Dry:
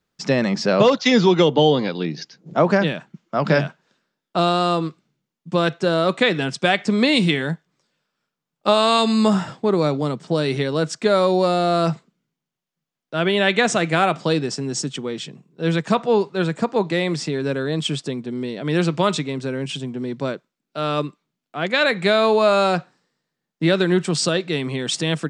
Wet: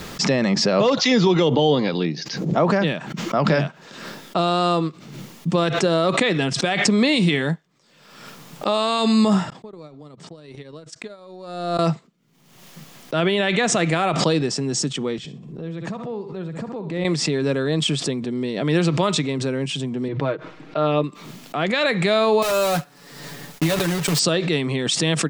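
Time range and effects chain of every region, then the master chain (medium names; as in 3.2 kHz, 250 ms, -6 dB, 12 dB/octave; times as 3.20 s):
9.50–11.79 s: compression 10:1, threshold -31 dBFS + gate -34 dBFS, range -35 dB
15.18–17.05 s: tilt EQ -2.5 dB/octave + compression 2.5:1, threshold -37 dBFS + flutter echo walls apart 10.8 m, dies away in 0.31 s
20.08–21.04 s: low-pass 2.4 kHz + peaking EQ 200 Hz -11.5 dB 0.44 oct + comb 6.4 ms, depth 61%
22.42–24.20 s: block-companded coder 3-bit + compression 12:1, threshold -18 dBFS + comb 7 ms
whole clip: band-stop 1.5 kHz, Q 15; peak limiter -10.5 dBFS; swell ahead of each attack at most 49 dB/s; trim +1.5 dB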